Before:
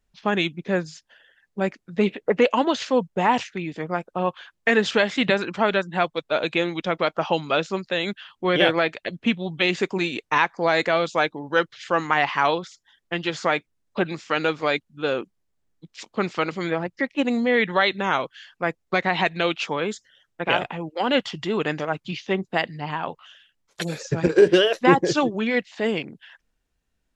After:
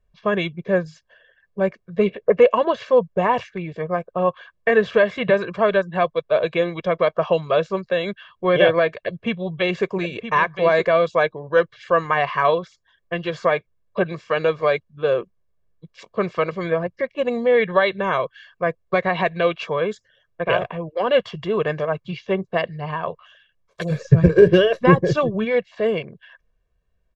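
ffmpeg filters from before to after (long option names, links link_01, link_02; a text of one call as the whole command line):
ffmpeg -i in.wav -filter_complex "[0:a]asettb=1/sr,asplit=3[link_01][link_02][link_03];[link_01]atrim=end=2.444[link_04];[link_02]atrim=start=2.44:end=5.34,asetpts=PTS-STARTPTS,afade=type=in:duration=0.004:curve=qsin,afade=type=out:start_time=2.896:duration=0.004:curve=qsin,acrossover=split=3200[link_05][link_06];[link_06]acompressor=threshold=-37dB:ratio=4:attack=1:release=60[link_07];[link_05][link_07]amix=inputs=2:normalize=0[link_08];[link_03]atrim=start=5.336[link_09];[link_04][link_08]acrossfade=duration=0.004:curve1=hsin:curve2=qsin[link_10];[link_10][link_09]acrossfade=duration=0.004:curve1=qsin:curve2=hsin,asettb=1/sr,asplit=3[link_11][link_12][link_13];[link_11]atrim=end=8.974[link_14];[link_12]atrim=start=8.97:end=10.87,asetpts=PTS-STARTPTS,afade=type=in:duration=0.004:curve=qsin,afade=type=out:start_time=1.896:duration=0.004:curve=qsin,aecho=1:1:971:0.335,atrim=end_sample=83790[link_15];[link_13]atrim=start=10.866[link_16];[link_14][link_15]acrossfade=duration=0.004:curve1=hsin:curve2=qsin[link_17];[link_17][link_16]acrossfade=duration=0.004:curve1=qsin:curve2=hsin,asplit=3[link_18][link_19][link_20];[link_18]afade=type=out:start_time=23.9:duration=0.02[link_21];[link_19]asubboost=boost=3.5:cutoff=240,afade=type=in:start_time=23.9:duration=0.02,afade=type=out:start_time=25.44:duration=0.02[link_22];[link_20]afade=type=in:start_time=25.44:duration=0.02[link_23];[link_21][link_22][link_23]amix=inputs=3:normalize=0,lowpass=frequency=1200:poles=1,aecho=1:1:1.8:0.8,volume=2.5dB" out.wav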